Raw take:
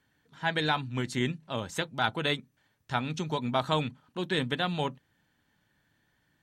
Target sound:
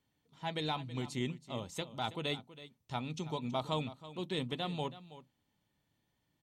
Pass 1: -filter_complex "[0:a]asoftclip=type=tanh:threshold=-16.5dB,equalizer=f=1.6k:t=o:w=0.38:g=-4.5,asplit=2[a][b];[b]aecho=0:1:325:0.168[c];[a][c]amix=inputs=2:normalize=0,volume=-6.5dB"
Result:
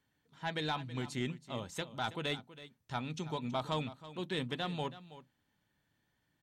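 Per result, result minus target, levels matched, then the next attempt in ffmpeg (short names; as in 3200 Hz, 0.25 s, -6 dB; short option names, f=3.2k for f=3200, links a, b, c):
soft clip: distortion +14 dB; 2000 Hz band +3.5 dB
-filter_complex "[0:a]asoftclip=type=tanh:threshold=-8dB,equalizer=f=1.6k:t=o:w=0.38:g=-4.5,asplit=2[a][b];[b]aecho=0:1:325:0.168[c];[a][c]amix=inputs=2:normalize=0,volume=-6.5dB"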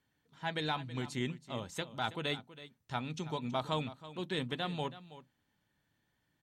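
2000 Hz band +3.5 dB
-filter_complex "[0:a]asoftclip=type=tanh:threshold=-8dB,equalizer=f=1.6k:t=o:w=0.38:g=-15.5,asplit=2[a][b];[b]aecho=0:1:325:0.168[c];[a][c]amix=inputs=2:normalize=0,volume=-6.5dB"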